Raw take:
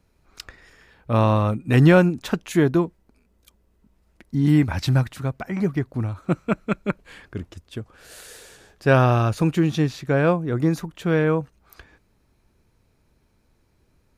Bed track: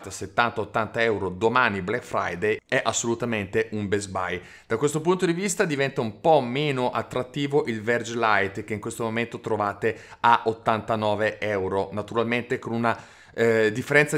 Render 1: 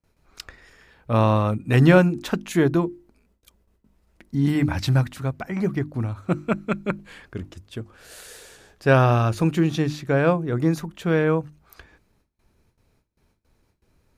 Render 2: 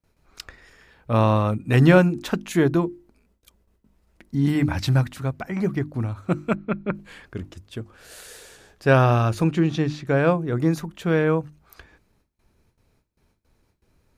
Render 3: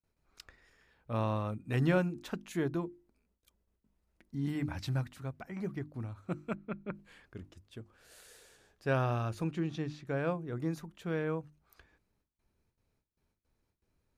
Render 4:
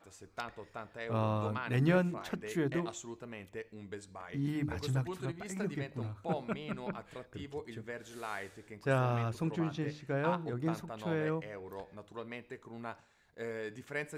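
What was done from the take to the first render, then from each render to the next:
gate with hold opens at -54 dBFS; notches 50/100/150/200/250/300/350 Hz
6.55–6.95 air absorption 330 m; 9.44–10.07 air absorption 61 m
gain -14 dB
add bed track -20 dB

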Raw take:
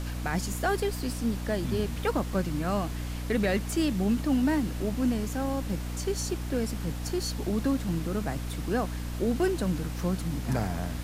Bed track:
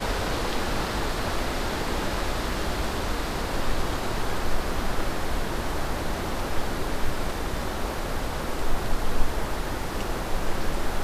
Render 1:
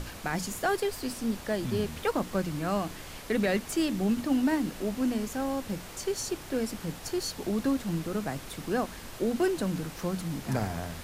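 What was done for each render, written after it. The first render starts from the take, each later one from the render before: notches 60/120/180/240/300 Hz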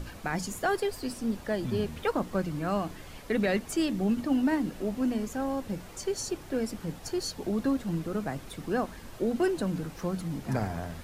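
denoiser 7 dB, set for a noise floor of -44 dBFS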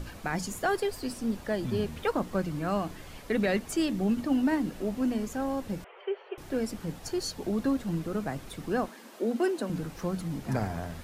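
5.84–6.38 Chebyshev band-pass 390–3100 Hz, order 5; 8.88–9.7 Chebyshev high-pass 220 Hz, order 4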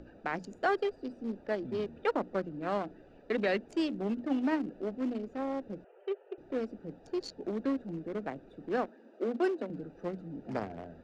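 Wiener smoothing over 41 samples; three-band isolator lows -17 dB, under 250 Hz, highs -23 dB, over 6300 Hz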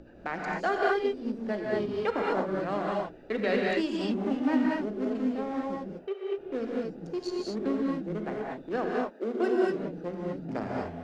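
non-linear reverb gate 0.26 s rising, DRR -3 dB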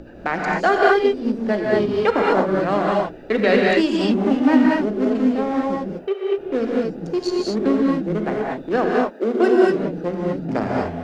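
gain +11 dB

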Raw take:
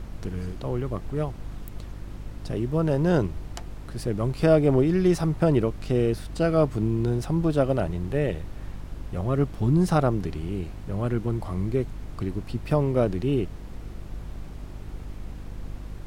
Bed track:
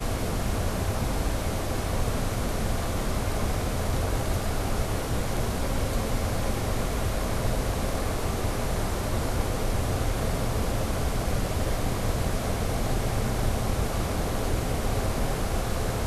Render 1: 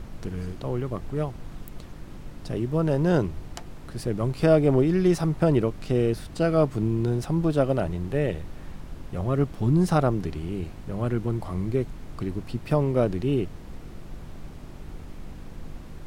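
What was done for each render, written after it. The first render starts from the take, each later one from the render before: de-hum 50 Hz, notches 2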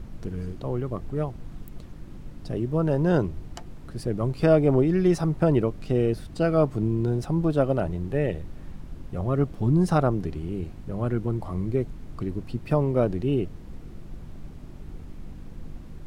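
denoiser 6 dB, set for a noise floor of -41 dBFS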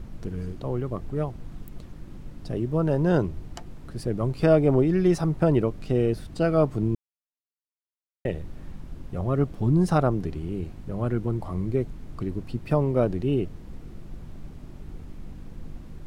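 6.95–8.25 mute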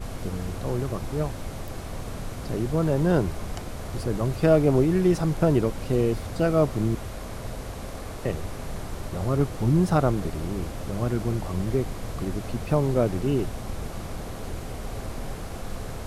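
add bed track -8 dB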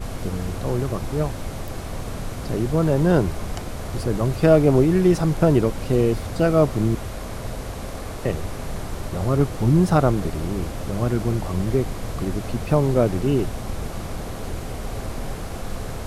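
gain +4 dB

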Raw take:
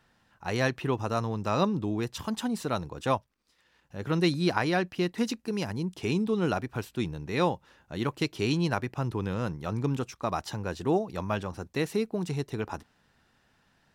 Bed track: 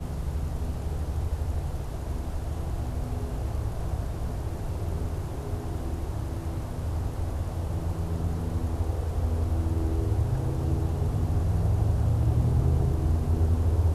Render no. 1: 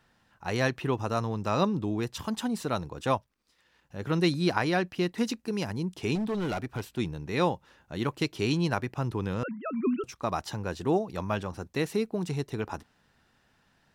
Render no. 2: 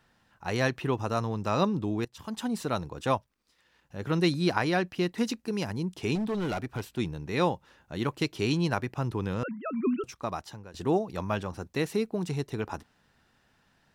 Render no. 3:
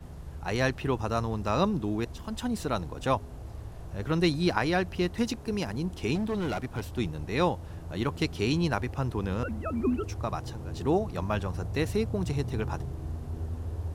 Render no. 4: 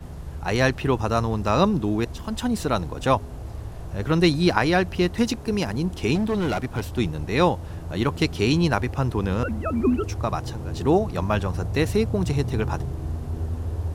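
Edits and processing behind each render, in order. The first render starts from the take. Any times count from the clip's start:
6.15–6.98 hard clip -27 dBFS; 9.43–10.04 sine-wave speech
2.05–2.52 fade in, from -21 dB; 10.06–10.74 fade out, to -18.5 dB
add bed track -11 dB
gain +6.5 dB

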